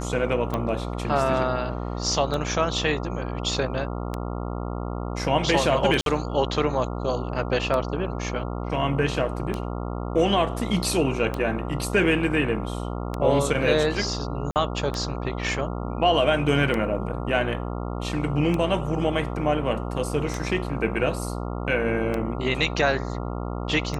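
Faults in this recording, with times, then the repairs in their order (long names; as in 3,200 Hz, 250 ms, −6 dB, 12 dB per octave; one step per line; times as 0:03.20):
mains buzz 60 Hz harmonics 23 −30 dBFS
scratch tick 33 1/3 rpm −14 dBFS
0:06.01–0:06.06: drop-out 52 ms
0:14.51–0:14.56: drop-out 48 ms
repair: click removal
hum removal 60 Hz, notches 23
repair the gap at 0:06.01, 52 ms
repair the gap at 0:14.51, 48 ms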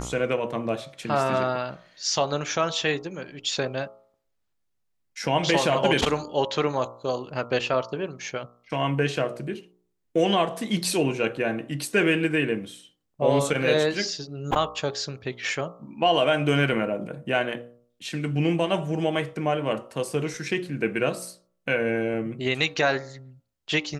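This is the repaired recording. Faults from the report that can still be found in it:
none of them is left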